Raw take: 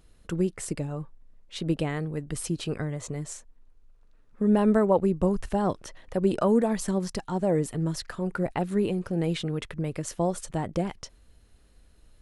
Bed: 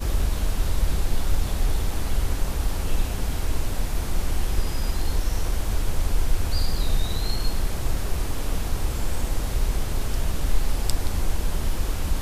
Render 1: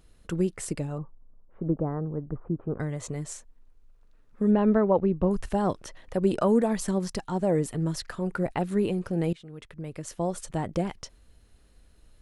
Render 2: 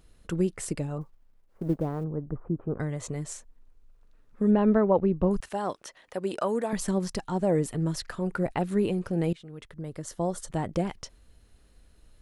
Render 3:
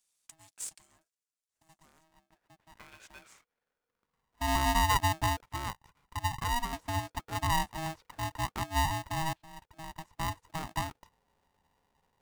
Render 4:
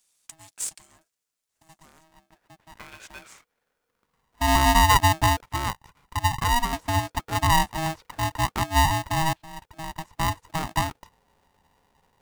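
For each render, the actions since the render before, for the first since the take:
0.98–2.8 steep low-pass 1300 Hz; 4.51–5.31 air absorption 240 m; 9.33–10.61 fade in, from -21.5 dB
1.01–2.04 G.711 law mismatch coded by A; 5.4–6.73 HPF 650 Hz 6 dB/oct; 9.68–10.52 bell 2500 Hz -11.5 dB 0.28 oct
band-pass sweep 7600 Hz -> 410 Hz, 1.93–4.59; polarity switched at an audio rate 480 Hz
gain +9 dB

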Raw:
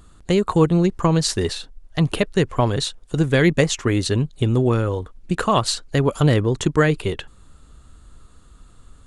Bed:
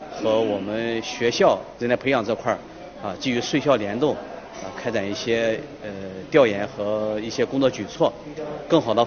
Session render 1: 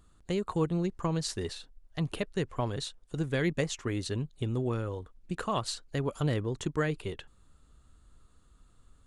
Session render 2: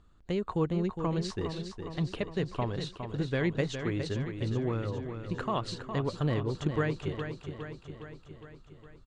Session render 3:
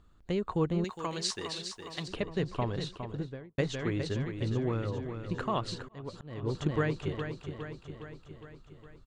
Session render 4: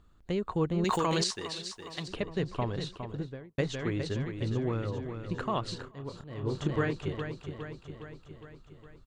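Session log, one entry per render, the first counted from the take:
gain -13 dB
air absorption 120 m; feedback echo 0.411 s, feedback 60%, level -8 dB
0.84–2.08 tilt +4 dB/oct; 2.93–3.58 studio fade out; 5.74–6.43 auto swell 0.497 s
0.77–1.24 fast leveller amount 100%; 5.76–6.93 doubler 29 ms -8 dB

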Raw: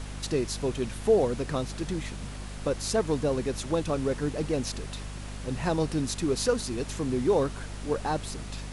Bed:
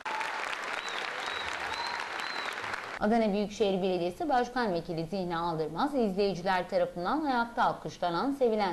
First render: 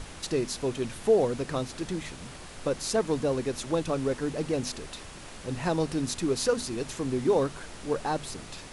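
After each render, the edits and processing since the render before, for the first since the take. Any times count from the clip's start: notches 50/100/150/200/250 Hz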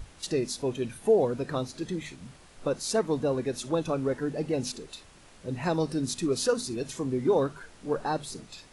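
noise print and reduce 10 dB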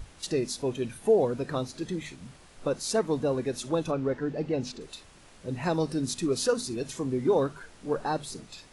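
3.91–4.81 air absorption 100 m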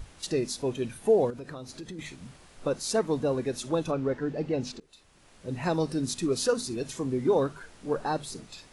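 1.3–1.99 compressor 5:1, threshold -37 dBFS; 4.8–5.57 fade in, from -22.5 dB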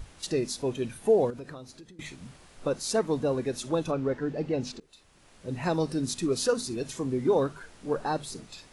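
1.4–1.99 fade out, to -15 dB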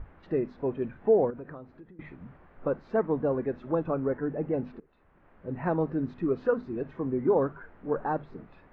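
LPF 1800 Hz 24 dB/oct; bell 120 Hz -4.5 dB 0.25 oct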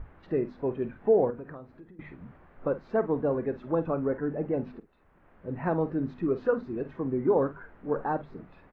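doubler 48 ms -14 dB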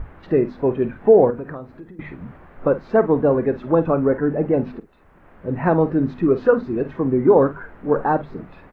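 gain +10.5 dB; limiter -3 dBFS, peak gain reduction 1 dB

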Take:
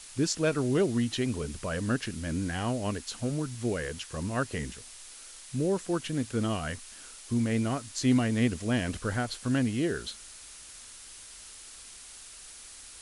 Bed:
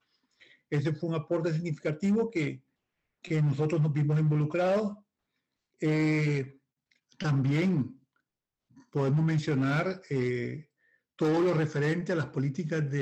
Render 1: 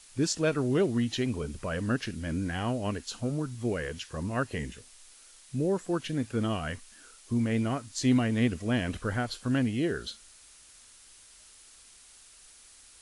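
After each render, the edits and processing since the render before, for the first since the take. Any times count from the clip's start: noise print and reduce 7 dB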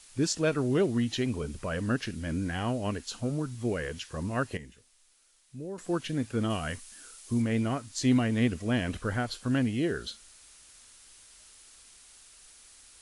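4.57–5.78 gain -11 dB; 6.5–7.42 high shelf 5700 Hz +7.5 dB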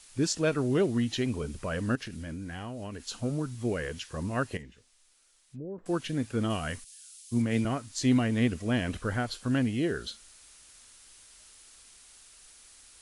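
1.95–3.06 compressor, threshold -35 dBFS; 4.61–5.86 treble ducked by the level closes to 640 Hz, closed at -37 dBFS; 6.84–7.65 three-band expander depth 100%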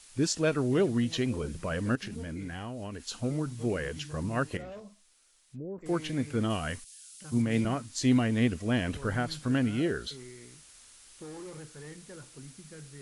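add bed -18 dB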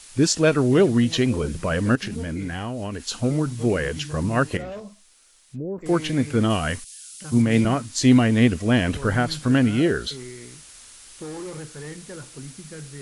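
gain +9 dB

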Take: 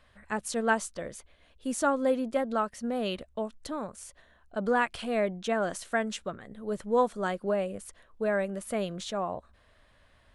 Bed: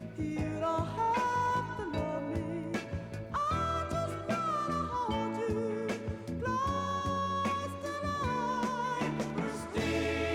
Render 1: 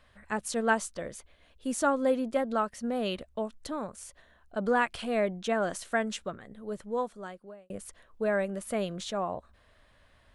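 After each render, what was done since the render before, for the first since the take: 6.16–7.7 fade out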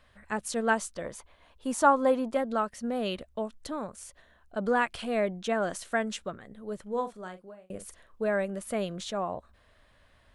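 1.04–2.35 bell 960 Hz +11 dB 0.78 oct; 6.82–8.22 doubler 43 ms -10.5 dB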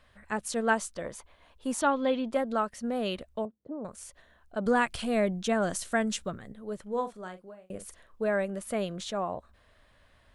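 1.81–2.32 EQ curve 230 Hz 0 dB, 1100 Hz -7 dB, 3400 Hz +9 dB, 8800 Hz -18 dB; 3.45–3.85 Chebyshev band-pass 140–500 Hz; 4.66–6.52 tone controls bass +7 dB, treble +6 dB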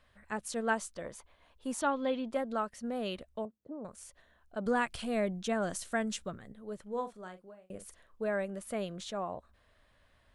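gain -5 dB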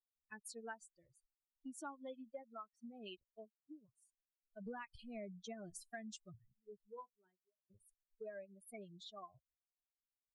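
per-bin expansion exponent 3; compressor 3:1, threshold -50 dBFS, peak gain reduction 16 dB

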